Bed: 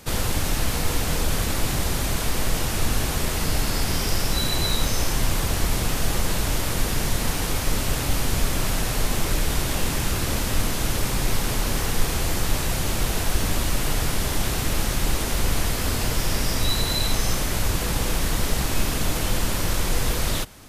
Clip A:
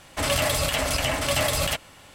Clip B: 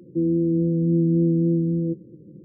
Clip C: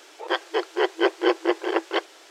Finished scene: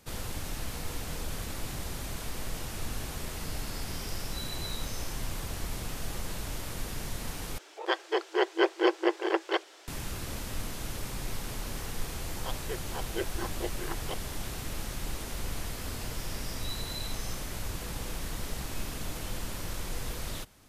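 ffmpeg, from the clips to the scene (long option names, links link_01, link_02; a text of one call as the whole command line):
ffmpeg -i bed.wav -i cue0.wav -i cue1.wav -i cue2.wav -filter_complex "[3:a]asplit=2[link_01][link_02];[0:a]volume=-13dB[link_03];[link_02]asplit=2[link_04][link_05];[link_05]afreqshift=-1.9[link_06];[link_04][link_06]amix=inputs=2:normalize=1[link_07];[link_03]asplit=2[link_08][link_09];[link_08]atrim=end=7.584[link_10];[link_01]atrim=end=2.3,asetpts=PTS-STARTPTS,volume=-4dB[link_11];[link_09]atrim=start=9.876[link_12];[link_07]atrim=end=2.3,asetpts=PTS-STARTPTS,volume=-12dB,afade=type=in:duration=0.004:curve=hsin,afade=type=out:start_time=2.296:duration=0.004:curve=hsin,adelay=12150[link_13];[link_10][link_11]acrossfade=duration=0.004:curve1=hsin:curve2=hsin[link_14];[link_14][link_12]acrossfade=duration=0.004:curve1=hsin:curve2=hsin[link_15];[link_15][link_13]amix=inputs=2:normalize=0" out.wav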